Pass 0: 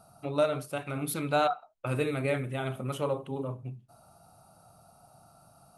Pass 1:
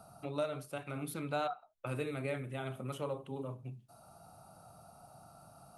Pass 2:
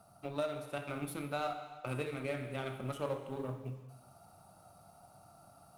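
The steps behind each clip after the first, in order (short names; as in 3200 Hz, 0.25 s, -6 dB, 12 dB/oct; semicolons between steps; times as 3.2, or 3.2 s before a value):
three-band squash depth 40%; gain -7.5 dB
G.711 law mismatch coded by A; non-linear reverb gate 0.45 s falling, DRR 6.5 dB; vocal rider within 3 dB 0.5 s; gain +2 dB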